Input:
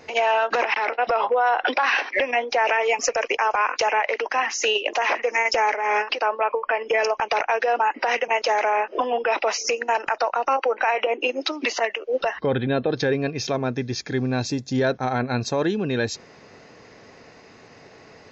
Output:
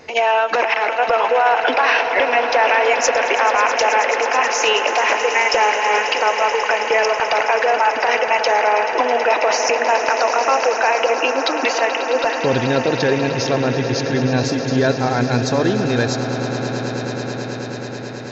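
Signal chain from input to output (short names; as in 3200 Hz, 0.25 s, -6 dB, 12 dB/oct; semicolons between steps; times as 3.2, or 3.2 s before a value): swelling echo 0.108 s, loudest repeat 8, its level -14 dB; 9.5–10.74 three-band squash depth 40%; gain +4 dB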